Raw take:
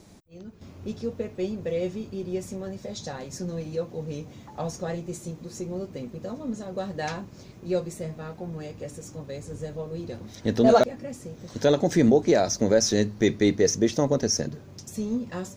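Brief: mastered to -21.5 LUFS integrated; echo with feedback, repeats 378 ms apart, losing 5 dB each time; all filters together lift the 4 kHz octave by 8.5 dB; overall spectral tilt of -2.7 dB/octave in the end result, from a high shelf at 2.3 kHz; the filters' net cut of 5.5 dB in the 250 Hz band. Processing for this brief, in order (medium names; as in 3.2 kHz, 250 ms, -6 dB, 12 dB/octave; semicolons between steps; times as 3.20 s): peaking EQ 250 Hz -7.5 dB; treble shelf 2.3 kHz +8 dB; peaking EQ 4 kHz +3 dB; feedback delay 378 ms, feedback 56%, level -5 dB; trim +2.5 dB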